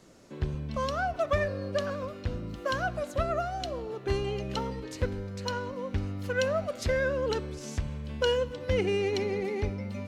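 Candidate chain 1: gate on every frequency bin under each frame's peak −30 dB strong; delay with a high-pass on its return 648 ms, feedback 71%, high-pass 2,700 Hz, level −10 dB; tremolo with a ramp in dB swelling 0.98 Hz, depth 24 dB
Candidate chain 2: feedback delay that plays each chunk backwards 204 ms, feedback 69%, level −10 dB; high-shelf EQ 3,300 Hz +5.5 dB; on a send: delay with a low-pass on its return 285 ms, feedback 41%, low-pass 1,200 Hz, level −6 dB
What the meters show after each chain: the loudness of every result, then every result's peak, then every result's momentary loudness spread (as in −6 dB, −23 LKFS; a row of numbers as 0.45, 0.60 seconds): −38.5, −29.0 LKFS; −17.0, −12.5 dBFS; 15, 6 LU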